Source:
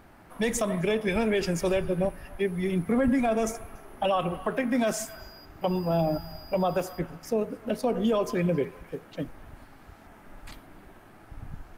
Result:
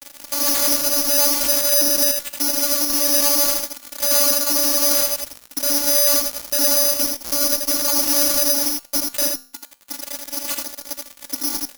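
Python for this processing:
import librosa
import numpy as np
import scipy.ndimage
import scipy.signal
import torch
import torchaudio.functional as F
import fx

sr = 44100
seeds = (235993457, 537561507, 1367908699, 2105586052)

p1 = fx.lower_of_two(x, sr, delay_ms=1.8)
p2 = fx.dereverb_blind(p1, sr, rt60_s=1.1)
p3 = p2 + 0.79 * np.pad(p2, (int(7.4 * sr / 1000.0), 0))[:len(p2)]
p4 = fx.over_compress(p3, sr, threshold_db=-29.0, ratio=-0.5)
p5 = fx.vocoder(p4, sr, bands=16, carrier='saw', carrier_hz=287.0)
p6 = fx.fuzz(p5, sr, gain_db=48.0, gate_db=-50.0)
p7 = fx.comb_fb(p6, sr, f0_hz=130.0, decay_s=0.44, harmonics='all', damping=0.0, mix_pct=60)
p8 = p7 + fx.echo_single(p7, sr, ms=82, db=-4.0, dry=0)
p9 = (np.kron(p8[::8], np.eye(8)[0]) * 8)[:len(p8)]
y = p9 * 10.0 ** (-6.0 / 20.0)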